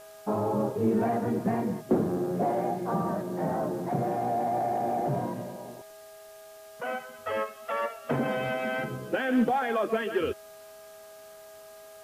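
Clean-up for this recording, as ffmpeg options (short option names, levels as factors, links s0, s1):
-af "bandreject=f=409.5:t=h:w=4,bandreject=f=819:t=h:w=4,bandreject=f=1228.5:t=h:w=4,bandreject=f=1638:t=h:w=4,bandreject=f=640:w=30,afftdn=nr=27:nf=-49"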